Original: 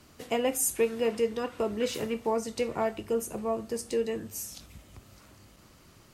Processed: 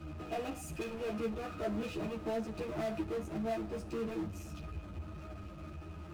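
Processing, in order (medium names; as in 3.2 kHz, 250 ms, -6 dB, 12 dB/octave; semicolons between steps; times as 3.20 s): pitch-class resonator D#, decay 0.12 s; power-law waveshaper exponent 0.5; three-phase chorus; trim +5.5 dB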